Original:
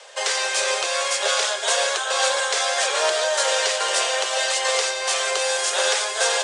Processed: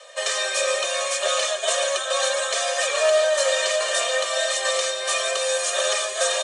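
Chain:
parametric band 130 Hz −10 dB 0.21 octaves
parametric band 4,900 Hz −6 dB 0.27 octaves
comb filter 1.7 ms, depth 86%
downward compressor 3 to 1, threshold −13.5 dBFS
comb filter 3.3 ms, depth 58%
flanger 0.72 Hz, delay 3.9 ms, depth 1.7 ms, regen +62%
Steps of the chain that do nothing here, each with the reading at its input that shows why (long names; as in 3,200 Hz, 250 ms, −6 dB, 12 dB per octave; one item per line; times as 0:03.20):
parametric band 130 Hz: nothing at its input below 340 Hz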